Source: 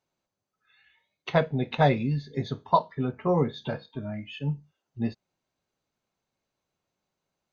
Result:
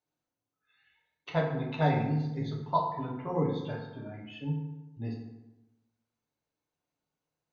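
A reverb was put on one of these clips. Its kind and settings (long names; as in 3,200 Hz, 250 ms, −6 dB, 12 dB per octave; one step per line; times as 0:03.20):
feedback delay network reverb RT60 1 s, low-frequency decay 1.1×, high-frequency decay 0.6×, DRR −1.5 dB
level −9.5 dB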